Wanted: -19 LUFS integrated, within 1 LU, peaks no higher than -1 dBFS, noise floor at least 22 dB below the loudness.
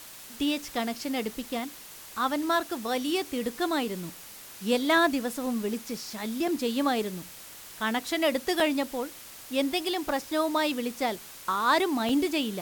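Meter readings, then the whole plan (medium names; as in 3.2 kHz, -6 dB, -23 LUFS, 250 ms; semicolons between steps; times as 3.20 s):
dropouts 4; longest dropout 3.3 ms; noise floor -46 dBFS; noise floor target -51 dBFS; loudness -28.5 LUFS; peak level -11.5 dBFS; loudness target -19.0 LUFS
-> interpolate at 6.48/8.60/10.09/12.09 s, 3.3 ms; noise reduction 6 dB, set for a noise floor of -46 dBFS; trim +9.5 dB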